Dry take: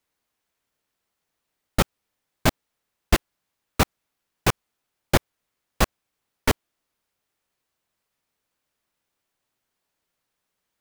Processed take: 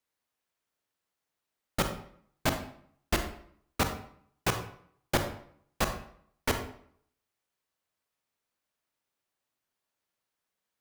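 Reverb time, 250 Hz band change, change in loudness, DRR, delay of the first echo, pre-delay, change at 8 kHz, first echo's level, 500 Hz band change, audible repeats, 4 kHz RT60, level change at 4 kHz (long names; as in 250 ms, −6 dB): 0.60 s, −7.5 dB, −7.5 dB, 6.0 dB, no echo audible, 33 ms, −6.5 dB, no echo audible, −6.5 dB, no echo audible, 0.45 s, −6.5 dB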